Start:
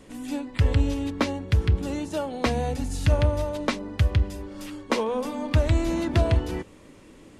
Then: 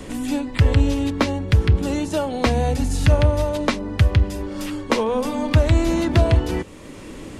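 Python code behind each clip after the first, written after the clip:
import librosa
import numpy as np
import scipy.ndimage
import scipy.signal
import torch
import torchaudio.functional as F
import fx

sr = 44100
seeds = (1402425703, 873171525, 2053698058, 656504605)

y = fx.band_squash(x, sr, depth_pct=40)
y = y * librosa.db_to_amplitude(5.5)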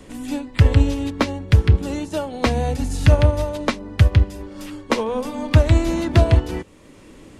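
y = fx.upward_expand(x, sr, threshold_db=-32.0, expansion=1.5)
y = y * librosa.db_to_amplitude(3.0)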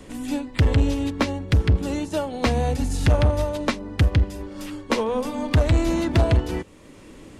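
y = 10.0 ** (-11.5 / 20.0) * np.tanh(x / 10.0 ** (-11.5 / 20.0))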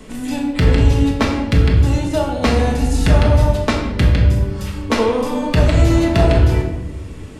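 y = fx.room_shoebox(x, sr, seeds[0], volume_m3=530.0, walls='mixed', distance_m=1.5)
y = y * librosa.db_to_amplitude(3.0)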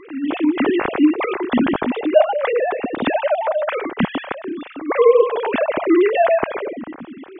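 y = fx.sine_speech(x, sr)
y = y * librosa.db_to_amplitude(-4.0)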